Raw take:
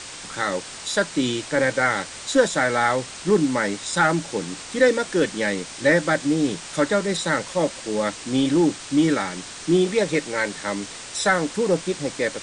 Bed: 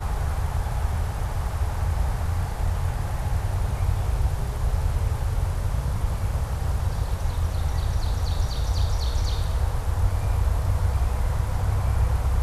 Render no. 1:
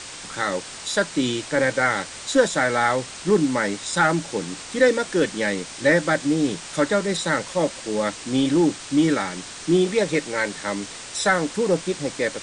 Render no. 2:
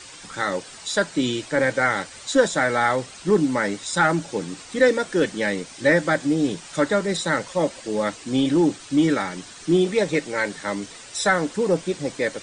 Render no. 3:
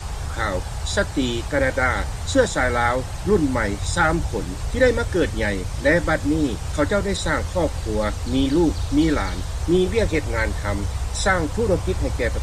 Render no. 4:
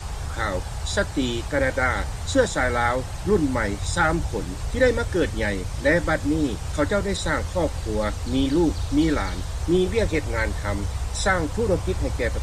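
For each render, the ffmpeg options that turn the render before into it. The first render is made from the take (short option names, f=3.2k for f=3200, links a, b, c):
-af anull
-af "afftdn=nr=9:nf=-38"
-filter_complex "[1:a]volume=-3dB[a];[0:a][a]amix=inputs=2:normalize=0"
-af "volume=-2dB"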